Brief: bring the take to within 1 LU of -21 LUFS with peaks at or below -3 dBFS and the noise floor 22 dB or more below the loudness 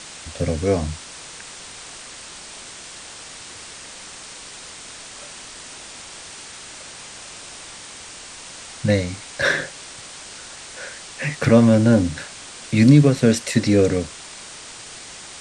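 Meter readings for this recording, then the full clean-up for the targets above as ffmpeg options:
noise floor -39 dBFS; noise floor target -41 dBFS; loudness -18.5 LUFS; peak -2.0 dBFS; loudness target -21.0 LUFS
-> -af "afftdn=nr=6:nf=-39"
-af "volume=-2.5dB"

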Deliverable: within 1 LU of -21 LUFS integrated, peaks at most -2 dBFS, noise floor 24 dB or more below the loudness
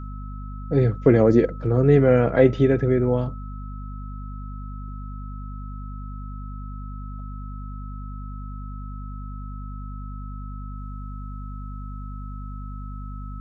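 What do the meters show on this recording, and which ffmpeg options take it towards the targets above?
hum 50 Hz; harmonics up to 250 Hz; hum level -31 dBFS; steady tone 1300 Hz; tone level -43 dBFS; loudness -19.0 LUFS; peak -3.5 dBFS; loudness target -21.0 LUFS
-> -af "bandreject=f=50:t=h:w=6,bandreject=f=100:t=h:w=6,bandreject=f=150:t=h:w=6,bandreject=f=200:t=h:w=6,bandreject=f=250:t=h:w=6"
-af "bandreject=f=1.3k:w=30"
-af "volume=-2dB"

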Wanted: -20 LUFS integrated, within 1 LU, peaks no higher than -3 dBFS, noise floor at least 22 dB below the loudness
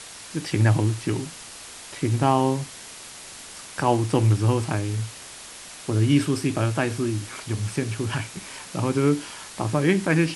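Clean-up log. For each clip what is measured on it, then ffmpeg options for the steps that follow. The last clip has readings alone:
noise floor -41 dBFS; noise floor target -46 dBFS; loudness -24.0 LUFS; peak -6.0 dBFS; loudness target -20.0 LUFS
-> -af "afftdn=nr=6:nf=-41"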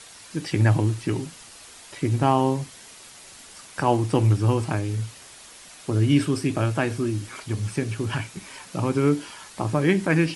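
noise floor -46 dBFS; loudness -24.0 LUFS; peak -6.0 dBFS; loudness target -20.0 LUFS
-> -af "volume=4dB,alimiter=limit=-3dB:level=0:latency=1"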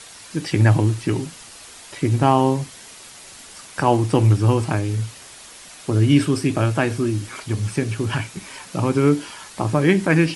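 loudness -20.0 LUFS; peak -3.0 dBFS; noise floor -42 dBFS

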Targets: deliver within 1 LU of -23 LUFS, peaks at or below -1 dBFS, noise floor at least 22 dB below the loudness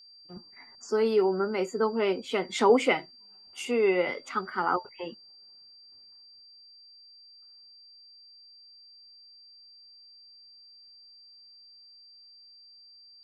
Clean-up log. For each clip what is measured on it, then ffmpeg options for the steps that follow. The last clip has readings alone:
steady tone 4700 Hz; tone level -51 dBFS; loudness -27.0 LUFS; peak -9.5 dBFS; loudness target -23.0 LUFS
-> -af "bandreject=f=4.7k:w=30"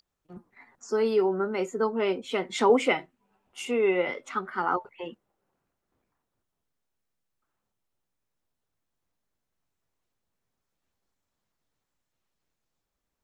steady tone none; loudness -27.0 LUFS; peak -9.5 dBFS; loudness target -23.0 LUFS
-> -af "volume=4dB"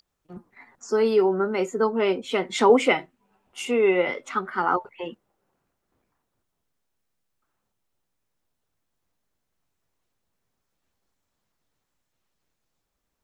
loudness -23.0 LUFS; peak -5.5 dBFS; noise floor -79 dBFS

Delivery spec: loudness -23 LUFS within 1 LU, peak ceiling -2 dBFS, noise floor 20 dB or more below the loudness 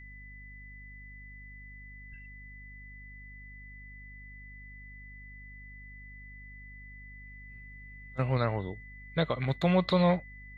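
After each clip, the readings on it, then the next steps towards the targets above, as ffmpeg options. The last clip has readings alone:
hum 50 Hz; harmonics up to 250 Hz; hum level -47 dBFS; steady tone 2000 Hz; tone level -49 dBFS; loudness -29.5 LUFS; peak -14.0 dBFS; loudness target -23.0 LUFS
-> -af "bandreject=f=50:t=h:w=4,bandreject=f=100:t=h:w=4,bandreject=f=150:t=h:w=4,bandreject=f=200:t=h:w=4,bandreject=f=250:t=h:w=4"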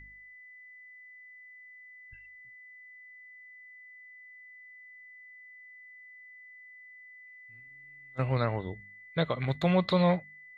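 hum none; steady tone 2000 Hz; tone level -49 dBFS
-> -af "bandreject=f=2k:w=30"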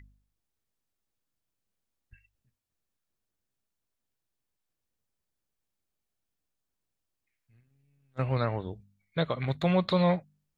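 steady tone none; loudness -29.0 LUFS; peak -14.0 dBFS; loudness target -23.0 LUFS
-> -af "volume=6dB"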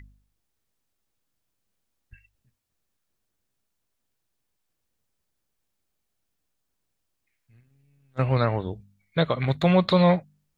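loudness -23.0 LUFS; peak -8.0 dBFS; noise floor -79 dBFS

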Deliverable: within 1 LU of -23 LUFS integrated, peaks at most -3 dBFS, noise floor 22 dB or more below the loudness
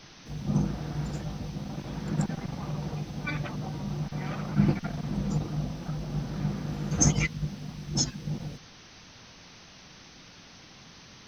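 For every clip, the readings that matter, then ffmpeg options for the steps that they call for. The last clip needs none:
noise floor -51 dBFS; noise floor target -53 dBFS; loudness -31.0 LUFS; peak -9.5 dBFS; loudness target -23.0 LUFS
-> -af "afftdn=nr=6:nf=-51"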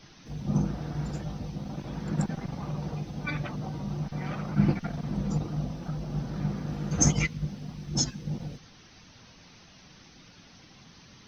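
noise floor -54 dBFS; loudness -31.0 LUFS; peak -9.5 dBFS; loudness target -23.0 LUFS
-> -af "volume=8dB,alimiter=limit=-3dB:level=0:latency=1"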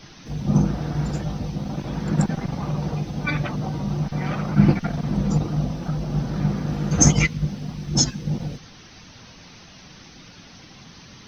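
loudness -23.5 LUFS; peak -3.0 dBFS; noise floor -46 dBFS

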